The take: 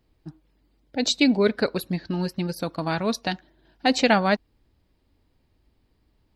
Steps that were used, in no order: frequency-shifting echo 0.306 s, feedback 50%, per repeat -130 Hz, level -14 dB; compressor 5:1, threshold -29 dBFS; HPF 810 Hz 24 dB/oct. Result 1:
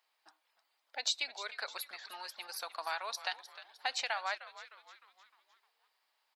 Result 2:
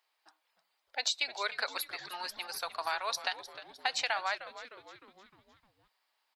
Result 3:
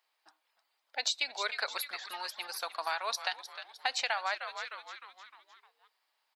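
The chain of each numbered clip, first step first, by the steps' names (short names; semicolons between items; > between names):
compressor > frequency-shifting echo > HPF; HPF > compressor > frequency-shifting echo; frequency-shifting echo > HPF > compressor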